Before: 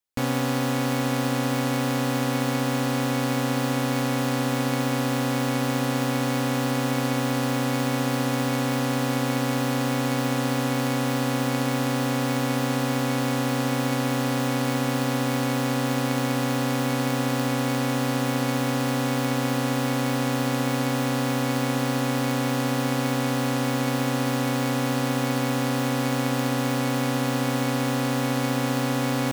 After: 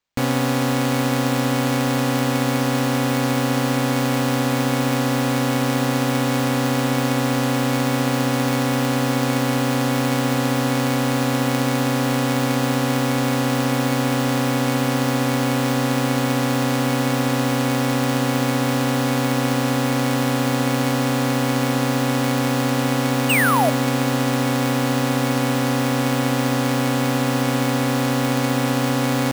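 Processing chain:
sound drawn into the spectrogram fall, 0:23.29–0:23.70, 570–3,000 Hz −23 dBFS
sample-rate reduction 11,000 Hz, jitter 0%
level +4.5 dB

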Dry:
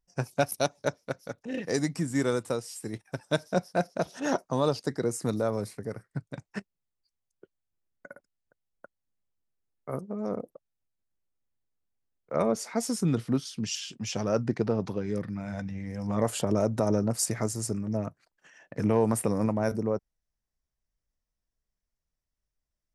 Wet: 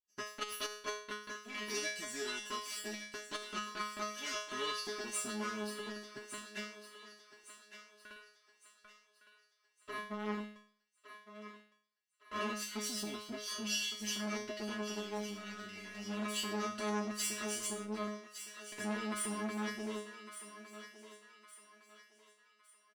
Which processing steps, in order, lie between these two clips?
lower of the sound and its delayed copy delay 0.65 ms
meter weighting curve D
noise gate −50 dBFS, range −7 dB
comb filter 3 ms, depth 79%
leveller curve on the samples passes 1
downward compressor 2 to 1, threshold −29 dBFS, peak gain reduction 8.5 dB
tuned comb filter 210 Hz, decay 0.47 s, harmonics all, mix 100%
on a send: feedback echo with a high-pass in the loop 1,160 ms, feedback 42%, high-pass 580 Hz, level −11 dB
on the sum: saturating transformer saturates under 950 Hz
level +6 dB

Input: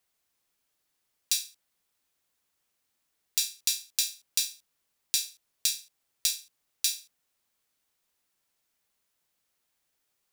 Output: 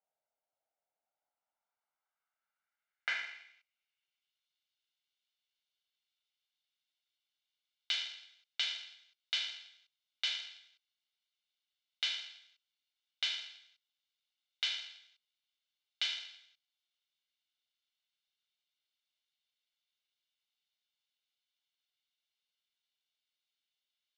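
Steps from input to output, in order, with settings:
lower of the sound and its delayed copy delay 0.6 ms
band-pass filter sweep 1,500 Hz → 8,000 Hz, 0:00.37–0:01.91
wrong playback speed 78 rpm record played at 33 rpm
level −2.5 dB

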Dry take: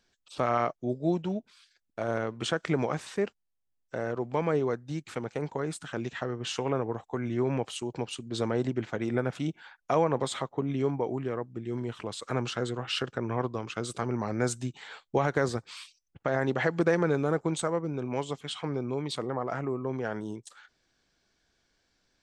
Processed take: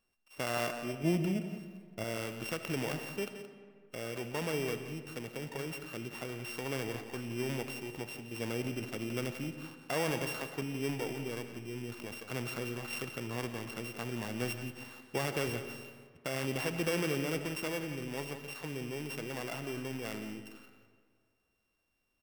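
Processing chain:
samples sorted by size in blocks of 16 samples
0:01.03–0:02.04: low-shelf EQ 310 Hz +10.5 dB
transient designer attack 0 dB, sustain +7 dB
single-tap delay 173 ms −11.5 dB
comb and all-pass reverb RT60 1.9 s, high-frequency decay 0.65×, pre-delay 15 ms, DRR 9.5 dB
level −8.5 dB

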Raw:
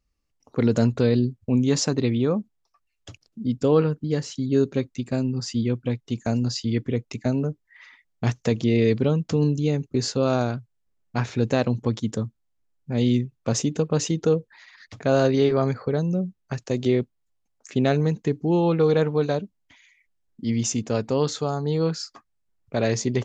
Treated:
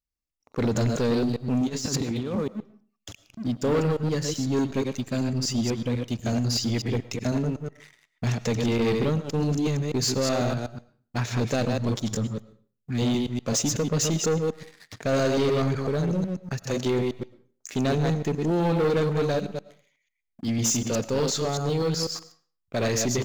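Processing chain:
delay that plays each chunk backwards 124 ms, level −5 dB
0:08.78–0:09.42: noise gate −22 dBFS, range −14 dB
first-order pre-emphasis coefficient 0.8
0:12.67–0:12.98: time-frequency box erased 380–1,200 Hz
high-shelf EQ 3,300 Hz −7 dB
0:01.66–0:02.35: compressor whose output falls as the input rises −39 dBFS, ratio −0.5
leveller curve on the samples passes 3
convolution reverb RT60 0.45 s, pre-delay 65 ms, DRR 17 dB
level +2 dB

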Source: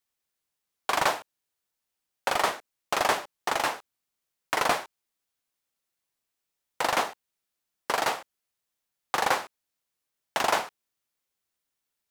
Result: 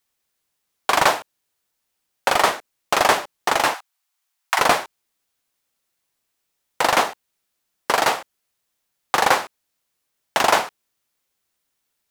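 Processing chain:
0:03.74–0:04.59: Butterworth high-pass 690 Hz 48 dB per octave
level +8 dB

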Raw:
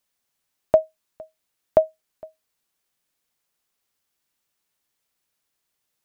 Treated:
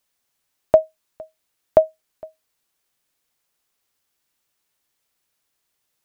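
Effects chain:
parametric band 200 Hz −3 dB 0.39 octaves
level +3 dB

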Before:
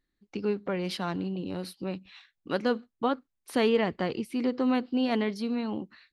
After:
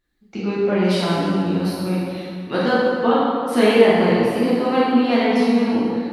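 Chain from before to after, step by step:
tape wow and flutter 59 cents
dense smooth reverb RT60 2.3 s, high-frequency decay 0.65×, DRR −9 dB
level +2.5 dB

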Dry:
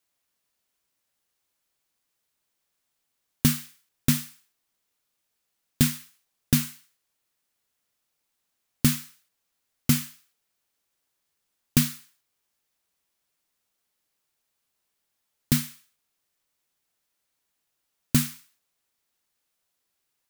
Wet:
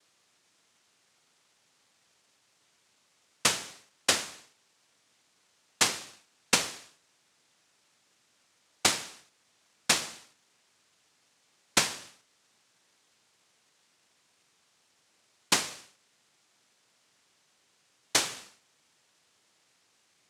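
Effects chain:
high-shelf EQ 4,100 Hz +10 dB
downward compressor 4 to 1, threshold −28 dBFS, peak gain reduction 15 dB
cochlear-implant simulation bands 1
level +8 dB

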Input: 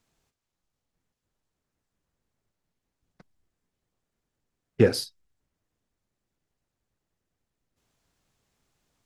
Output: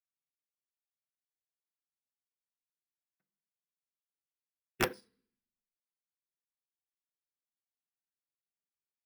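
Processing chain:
high-pass filter 200 Hz 6 dB per octave
high-shelf EQ 5,200 Hz −8 dB
notch filter 580 Hz, Q 12
wrap-around overflow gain 9.5 dB
convolution reverb RT60 0.65 s, pre-delay 3 ms, DRR 6 dB
bad sample-rate conversion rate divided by 3×, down filtered, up hold
expander for the loud parts 2.5 to 1, over −37 dBFS
level −4.5 dB

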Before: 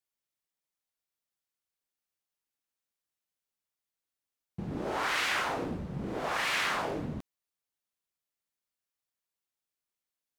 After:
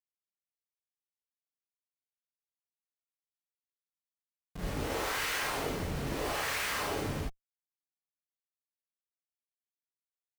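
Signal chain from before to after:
soft clipping −30.5 dBFS, distortion −12 dB
on a send: backwards echo 33 ms −8 dB
on the sum: comparator with hysteresis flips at −41.5 dBFS
reverb whose tail is shaped and stops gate 100 ms rising, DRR −7 dB

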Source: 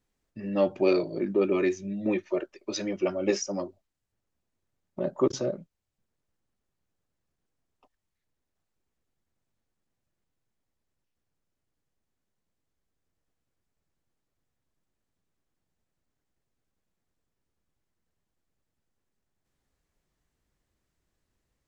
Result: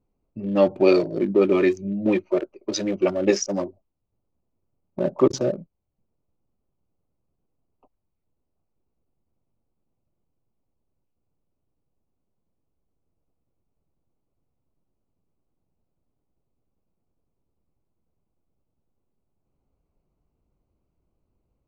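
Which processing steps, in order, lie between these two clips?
adaptive Wiener filter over 25 samples
level +6.5 dB

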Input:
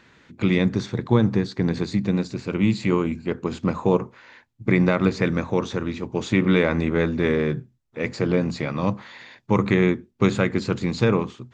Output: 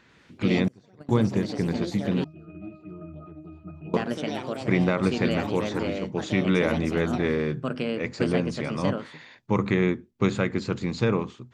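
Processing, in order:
delay with pitch and tempo change per echo 93 ms, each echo +4 semitones, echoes 3, each echo −6 dB
0:00.68–0:01.09: noise gate −16 dBFS, range −27 dB
0:02.24–0:03.94: resonances in every octave D#, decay 0.3 s
level −4 dB

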